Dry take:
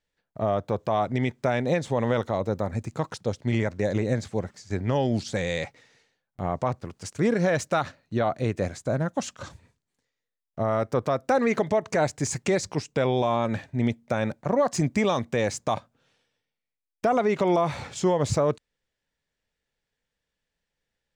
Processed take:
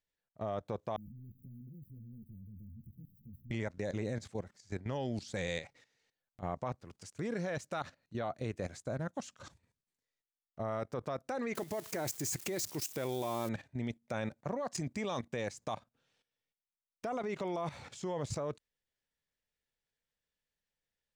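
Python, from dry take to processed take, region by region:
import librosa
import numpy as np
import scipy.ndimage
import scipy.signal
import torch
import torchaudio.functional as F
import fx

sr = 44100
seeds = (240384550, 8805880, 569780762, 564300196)

y = fx.chain(x, sr, fx.zero_step(step_db=-36.5),
    fx.cheby2_bandstop(low_hz=810.0, high_hz=5400.0, order=4, stop_db=70),
    fx.ensemble(), at=(0.96, 3.51))
y = fx.chain(y, sr, fx.crossing_spikes(level_db=-26.0),
    fx.peak_eq(hz=340.0, db=8.0, octaves=0.31), at=(11.55, 13.49))
y = fx.high_shelf(y, sr, hz=2500.0, db=3.5)
y = fx.level_steps(y, sr, step_db=14)
y = F.gain(torch.from_numpy(y), -8.0).numpy()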